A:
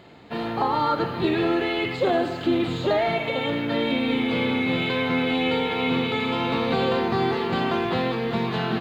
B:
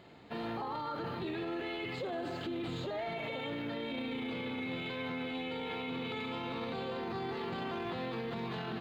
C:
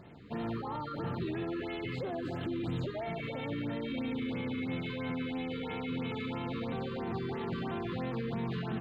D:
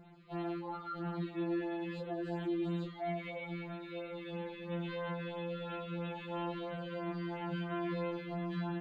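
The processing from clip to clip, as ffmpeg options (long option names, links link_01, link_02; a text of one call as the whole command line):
ffmpeg -i in.wav -af "alimiter=limit=-23.5dB:level=0:latency=1:release=19,volume=-7.5dB" out.wav
ffmpeg -i in.wav -af "bass=frequency=250:gain=8,treble=frequency=4000:gain=-5,areverse,acompressor=mode=upward:threshold=-48dB:ratio=2.5,areverse,afftfilt=real='re*(1-between(b*sr/1024,670*pow(6100/670,0.5+0.5*sin(2*PI*3*pts/sr))/1.41,670*pow(6100/670,0.5+0.5*sin(2*PI*3*pts/sr))*1.41))':imag='im*(1-between(b*sr/1024,670*pow(6100/670,0.5+0.5*sin(2*PI*3*pts/sr))/1.41,670*pow(6100/670,0.5+0.5*sin(2*PI*3*pts/sr))*1.41))':win_size=1024:overlap=0.75" out.wav
ffmpeg -i in.wav -af "afftfilt=real='re*2.83*eq(mod(b,8),0)':imag='im*2.83*eq(mod(b,8),0)':win_size=2048:overlap=0.75,volume=-3.5dB" out.wav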